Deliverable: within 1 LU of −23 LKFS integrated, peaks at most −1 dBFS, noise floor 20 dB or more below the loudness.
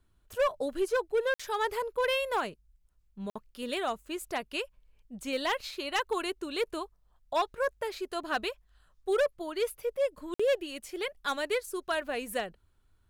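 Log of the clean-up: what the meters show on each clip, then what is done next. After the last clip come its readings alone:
share of clipped samples 1.1%; peaks flattened at −22.0 dBFS; number of dropouts 3; longest dropout 55 ms; integrated loudness −32.5 LKFS; sample peak −22.0 dBFS; target loudness −23.0 LKFS
→ clipped peaks rebuilt −22 dBFS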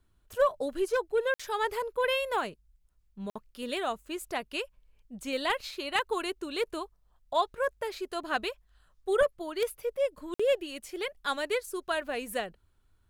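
share of clipped samples 0.0%; number of dropouts 3; longest dropout 55 ms
→ repair the gap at 0:01.34/0:03.30/0:10.34, 55 ms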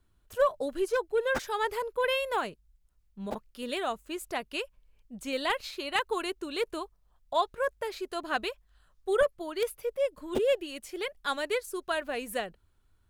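number of dropouts 0; integrated loudness −32.0 LKFS; sample peak −14.0 dBFS; target loudness −23.0 LKFS
→ level +9 dB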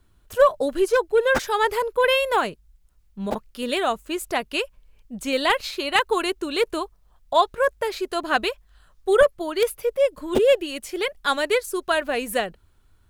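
integrated loudness −23.0 LKFS; sample peak −5.0 dBFS; background noise floor −59 dBFS

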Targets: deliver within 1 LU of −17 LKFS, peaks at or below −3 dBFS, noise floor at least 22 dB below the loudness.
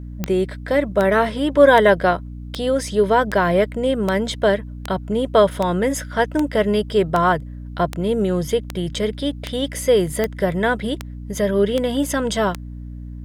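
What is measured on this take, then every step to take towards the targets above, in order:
number of clicks 17; mains hum 60 Hz; hum harmonics up to 300 Hz; level of the hum −30 dBFS; integrated loudness −19.5 LKFS; sample peak −1.0 dBFS; target loudness −17.0 LKFS
→ click removal
hum removal 60 Hz, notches 5
level +2.5 dB
brickwall limiter −3 dBFS

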